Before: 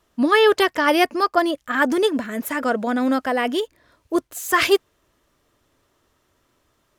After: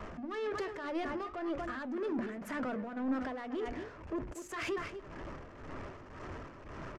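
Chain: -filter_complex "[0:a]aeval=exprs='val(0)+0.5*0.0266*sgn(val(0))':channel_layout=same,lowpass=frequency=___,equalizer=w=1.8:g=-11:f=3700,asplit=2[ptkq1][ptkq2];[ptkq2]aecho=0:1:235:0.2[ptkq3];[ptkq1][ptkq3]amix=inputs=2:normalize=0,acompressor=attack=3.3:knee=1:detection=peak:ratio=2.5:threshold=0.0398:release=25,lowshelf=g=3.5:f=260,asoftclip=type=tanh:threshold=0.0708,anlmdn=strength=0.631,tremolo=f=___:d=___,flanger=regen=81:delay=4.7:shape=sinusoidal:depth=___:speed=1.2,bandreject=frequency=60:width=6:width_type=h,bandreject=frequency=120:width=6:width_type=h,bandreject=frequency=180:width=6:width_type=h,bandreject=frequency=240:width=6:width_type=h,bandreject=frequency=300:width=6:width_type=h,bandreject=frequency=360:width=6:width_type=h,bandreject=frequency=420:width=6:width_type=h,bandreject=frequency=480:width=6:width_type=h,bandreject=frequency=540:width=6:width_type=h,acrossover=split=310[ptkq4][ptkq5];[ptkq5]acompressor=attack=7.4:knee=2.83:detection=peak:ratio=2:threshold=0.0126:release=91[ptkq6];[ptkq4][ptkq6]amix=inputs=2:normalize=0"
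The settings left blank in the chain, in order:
5200, 1.9, 0.64, 5.2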